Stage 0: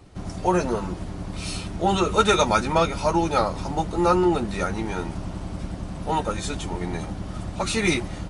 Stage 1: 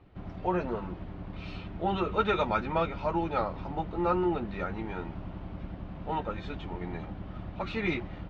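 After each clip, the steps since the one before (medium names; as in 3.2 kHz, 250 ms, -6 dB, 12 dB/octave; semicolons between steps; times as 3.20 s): low-pass 3.2 kHz 24 dB/octave; trim -8 dB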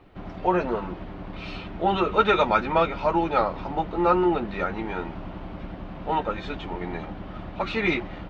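peaking EQ 88 Hz -9 dB 2.2 oct; trim +8 dB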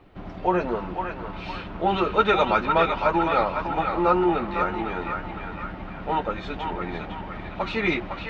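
band-passed feedback delay 506 ms, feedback 57%, band-pass 1.7 kHz, level -3 dB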